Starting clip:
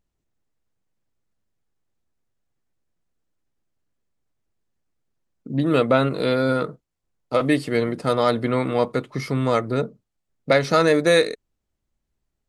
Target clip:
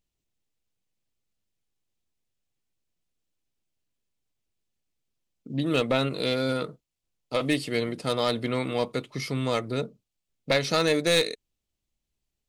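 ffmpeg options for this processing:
-af "highshelf=f=2.1k:t=q:w=1.5:g=6.5,aeval=exprs='clip(val(0),-1,0.2)':c=same,volume=-6dB"

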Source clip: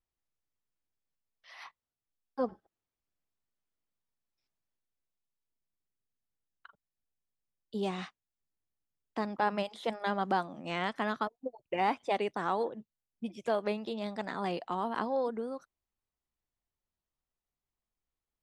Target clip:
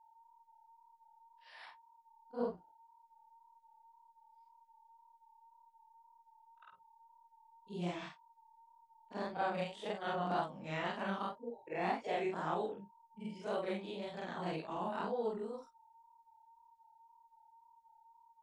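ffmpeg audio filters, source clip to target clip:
-af "afftfilt=real='re':imag='-im':win_size=4096:overlap=0.75,highshelf=f=3.1k:g=2.5,aeval=exprs='val(0)+0.000891*sin(2*PI*1000*n/s)':c=same,flanger=delay=15.5:depth=6.6:speed=1.9,asetrate=40440,aresample=44100,atempo=1.09051,volume=2dB"

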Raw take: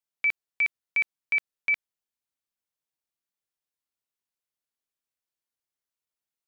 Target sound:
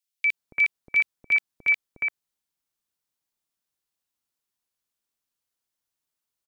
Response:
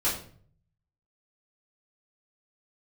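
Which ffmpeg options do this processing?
-filter_complex "[0:a]acrossover=split=540|2100[a][b][c];[a]adelay=280[d];[b]adelay=340[e];[d][e][c]amix=inputs=3:normalize=0,volume=6dB"

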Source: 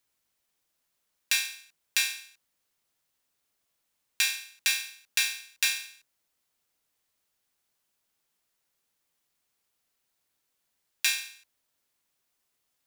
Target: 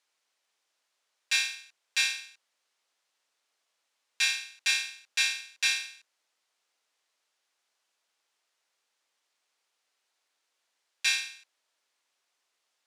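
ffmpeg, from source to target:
-af "alimiter=limit=-16.5dB:level=0:latency=1:release=22,highpass=490,lowpass=6.7k,volume=4dB"

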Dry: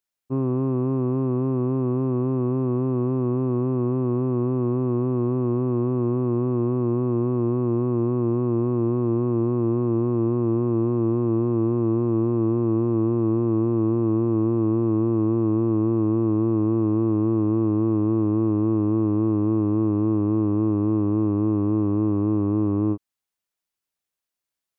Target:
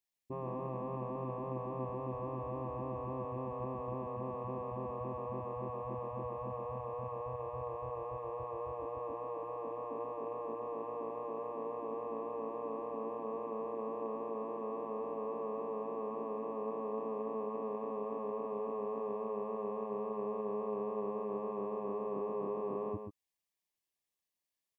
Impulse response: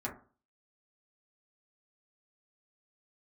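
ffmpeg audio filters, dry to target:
-filter_complex "[0:a]afftfilt=real='re*lt(hypot(re,im),0.282)':imag='im*lt(hypot(re,im),0.282)':win_size=1024:overlap=0.75,asuperstop=centerf=1400:order=20:qfactor=3.6,asplit=2[a][b];[b]aecho=0:1:130:0.473[c];[a][c]amix=inputs=2:normalize=0,volume=-5dB"

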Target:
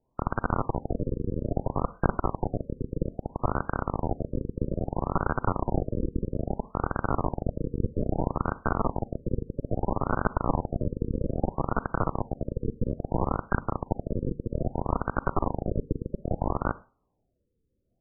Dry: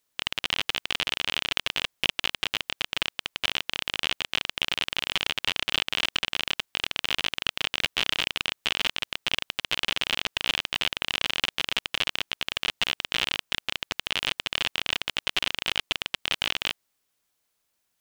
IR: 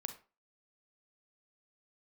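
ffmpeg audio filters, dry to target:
-filter_complex "[0:a]lowshelf=f=210:g=11.5,asplit=2[a][b];[1:a]atrim=start_sample=2205[c];[b][c]afir=irnorm=-1:irlink=0,volume=-3.5dB[d];[a][d]amix=inputs=2:normalize=0,afftfilt=real='re*lt(b*sr/1024,510*pow(1600/510,0.5+0.5*sin(2*PI*0.61*pts/sr)))':imag='im*lt(b*sr/1024,510*pow(1600/510,0.5+0.5*sin(2*PI*0.61*pts/sr)))':win_size=1024:overlap=0.75,volume=5.5dB"

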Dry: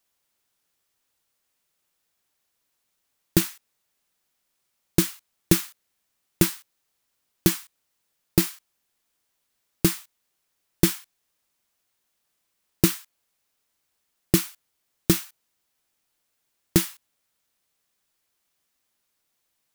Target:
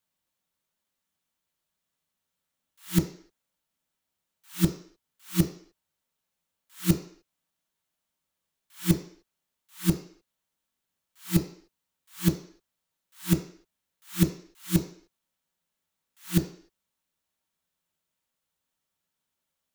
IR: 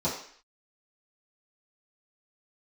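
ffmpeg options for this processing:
-filter_complex "[0:a]areverse,asplit=2[a][b];[1:a]atrim=start_sample=2205,afade=t=out:st=0.36:d=0.01,atrim=end_sample=16317[c];[b][c]afir=irnorm=-1:irlink=0,volume=-13dB[d];[a][d]amix=inputs=2:normalize=0,volume=-7.5dB"

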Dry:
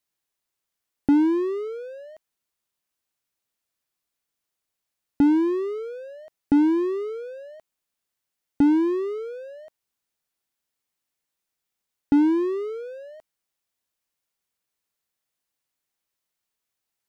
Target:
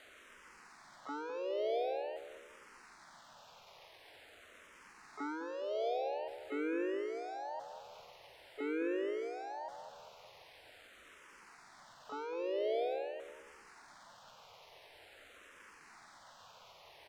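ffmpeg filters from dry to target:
-filter_complex "[0:a]aeval=exprs='val(0)+0.5*0.0299*sgn(val(0))':c=same,highpass=f=480:w=0.5412,highpass=f=480:w=1.3066,highshelf=f=3k:g=6,bandreject=f=780:w=24,alimiter=level_in=8dB:limit=-24dB:level=0:latency=1:release=46,volume=-8dB,asoftclip=type=tanh:threshold=-22dB,adynamicsmooth=sensitivity=7:basefreq=870,asplit=2[a][b];[b]adelay=205,lowpass=f=930:p=1,volume=-8dB,asplit=2[c][d];[d]adelay=205,lowpass=f=930:p=1,volume=0.5,asplit=2[e][f];[f]adelay=205,lowpass=f=930:p=1,volume=0.5,asplit=2[g][h];[h]adelay=205,lowpass=f=930:p=1,volume=0.5,asplit=2[i][j];[j]adelay=205,lowpass=f=930:p=1,volume=0.5,asplit=2[k][l];[l]adelay=205,lowpass=f=930:p=1,volume=0.5[m];[a][c][e][g][i][k][m]amix=inputs=7:normalize=0,asplit=3[n][o][p];[o]asetrate=58866,aresample=44100,atempo=0.749154,volume=-10dB[q];[p]asetrate=66075,aresample=44100,atempo=0.66742,volume=-2dB[r];[n][q][r]amix=inputs=3:normalize=0,asplit=2[s][t];[t]afreqshift=-0.46[u];[s][u]amix=inputs=2:normalize=1"

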